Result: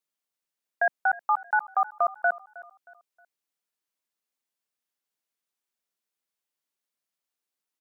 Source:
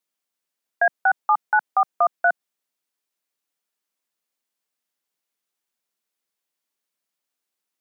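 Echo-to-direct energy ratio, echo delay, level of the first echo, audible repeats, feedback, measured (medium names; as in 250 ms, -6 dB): -19.5 dB, 314 ms, -20.0 dB, 2, 38%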